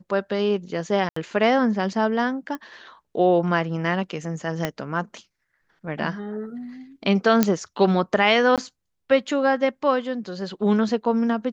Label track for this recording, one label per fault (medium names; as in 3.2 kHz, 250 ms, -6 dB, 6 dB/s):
1.090000	1.160000	dropout 74 ms
2.550000	2.550000	pop -19 dBFS
4.650000	4.650000	pop -9 dBFS
7.430000	7.430000	pop -4 dBFS
8.560000	8.580000	dropout 17 ms